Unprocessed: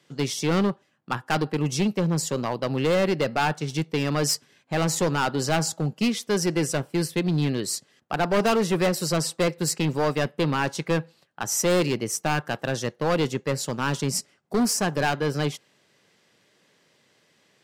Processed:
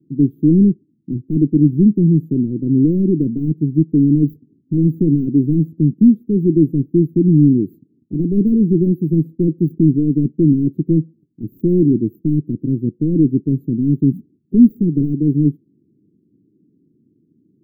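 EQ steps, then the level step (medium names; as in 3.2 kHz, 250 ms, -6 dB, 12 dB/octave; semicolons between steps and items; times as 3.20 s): inverse Chebyshev band-stop 890–9700 Hz, stop band 50 dB; resonant low shelf 440 Hz +12.5 dB, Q 3; -3.0 dB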